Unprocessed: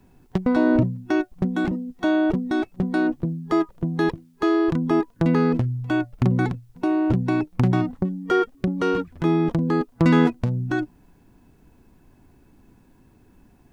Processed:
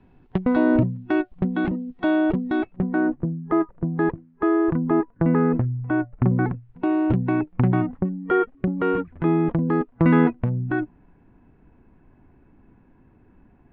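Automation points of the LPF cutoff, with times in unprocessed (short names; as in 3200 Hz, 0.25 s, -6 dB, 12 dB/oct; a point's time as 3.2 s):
LPF 24 dB/oct
2.56 s 3300 Hz
3.02 s 1900 Hz
6.46 s 1900 Hz
7.01 s 3500 Hz
7.35 s 2400 Hz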